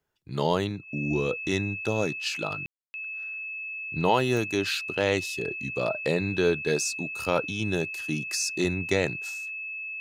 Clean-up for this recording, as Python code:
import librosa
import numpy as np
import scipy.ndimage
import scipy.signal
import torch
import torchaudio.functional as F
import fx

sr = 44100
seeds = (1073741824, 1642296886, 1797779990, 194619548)

y = fx.fix_declick_ar(x, sr, threshold=10.0)
y = fx.notch(y, sr, hz=2600.0, q=30.0)
y = fx.fix_ambience(y, sr, seeds[0], print_start_s=0.0, print_end_s=0.5, start_s=2.66, end_s=2.94)